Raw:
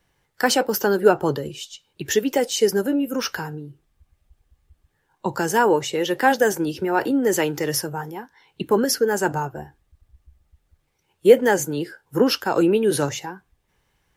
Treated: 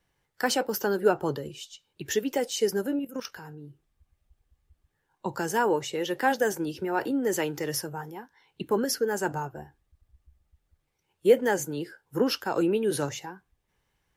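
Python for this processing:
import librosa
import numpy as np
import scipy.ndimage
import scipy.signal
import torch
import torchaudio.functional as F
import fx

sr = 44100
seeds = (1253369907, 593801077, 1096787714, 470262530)

y = fx.level_steps(x, sr, step_db=12, at=(2.99, 3.64))
y = y * 10.0 ** (-7.0 / 20.0)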